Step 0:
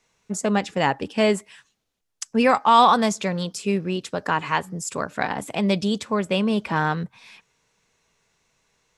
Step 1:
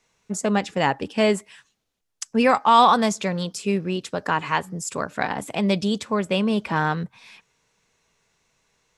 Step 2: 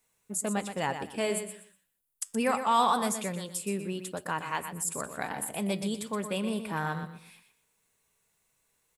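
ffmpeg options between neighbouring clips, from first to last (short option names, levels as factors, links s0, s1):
-af anull
-af "aexciter=amount=10.1:drive=3.2:freq=8300,flanger=delay=1.2:depth=9.6:regen=-86:speed=0.24:shape=triangular,aecho=1:1:122|244|366:0.355|0.0887|0.0222,volume=0.531"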